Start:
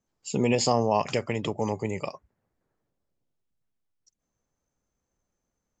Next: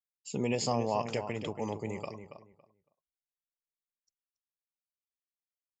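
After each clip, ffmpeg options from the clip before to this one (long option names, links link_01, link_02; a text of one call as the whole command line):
ffmpeg -i in.wav -filter_complex "[0:a]agate=range=-33dB:threshold=-55dB:ratio=3:detection=peak,asplit=2[link_01][link_02];[link_02]adelay=279,lowpass=frequency=2400:poles=1,volume=-9dB,asplit=2[link_03][link_04];[link_04]adelay=279,lowpass=frequency=2400:poles=1,volume=0.21,asplit=2[link_05][link_06];[link_06]adelay=279,lowpass=frequency=2400:poles=1,volume=0.21[link_07];[link_01][link_03][link_05][link_07]amix=inputs=4:normalize=0,volume=-7.5dB" out.wav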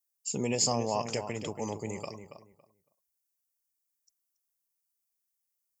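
ffmpeg -i in.wav -af "aexciter=amount=2.9:drive=7.4:freq=5100" out.wav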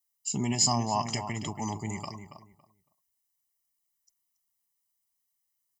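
ffmpeg -i in.wav -af "aecho=1:1:1:0.98" out.wav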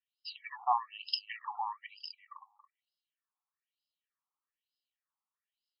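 ffmpeg -i in.wav -af "asuperstop=centerf=2100:order=4:qfactor=6.8,afftfilt=real='re*between(b*sr/1024,990*pow(3800/990,0.5+0.5*sin(2*PI*1.1*pts/sr))/1.41,990*pow(3800/990,0.5+0.5*sin(2*PI*1.1*pts/sr))*1.41)':imag='im*between(b*sr/1024,990*pow(3800/990,0.5+0.5*sin(2*PI*1.1*pts/sr))/1.41,990*pow(3800/990,0.5+0.5*sin(2*PI*1.1*pts/sr))*1.41)':win_size=1024:overlap=0.75,volume=4dB" out.wav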